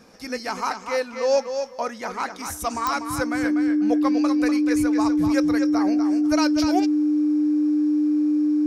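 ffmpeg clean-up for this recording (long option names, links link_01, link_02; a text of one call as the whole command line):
ffmpeg -i in.wav -af "adeclick=threshold=4,bandreject=frequency=300:width=30" out.wav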